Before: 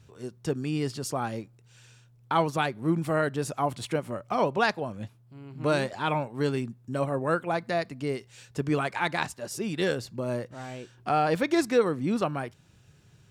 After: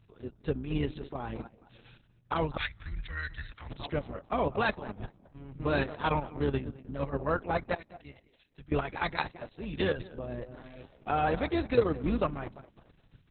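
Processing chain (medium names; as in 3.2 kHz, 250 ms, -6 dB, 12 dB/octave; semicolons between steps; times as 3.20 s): octave divider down 2 oct, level -4 dB; 7.75–8.72 s: amplifier tone stack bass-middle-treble 5-5-5; tape echo 208 ms, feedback 32%, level -13 dB, low-pass 1.7 kHz; level held to a coarse grid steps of 9 dB; 2.57–3.70 s: FFT filter 100 Hz 0 dB, 150 Hz -20 dB, 250 Hz -26 dB, 410 Hz -26 dB, 600 Hz -25 dB, 1.1 kHz -16 dB, 1.9 kHz +7 dB, 2.8 kHz -5 dB, 4.6 kHz +11 dB, 7.8 kHz -9 dB; Opus 6 kbps 48 kHz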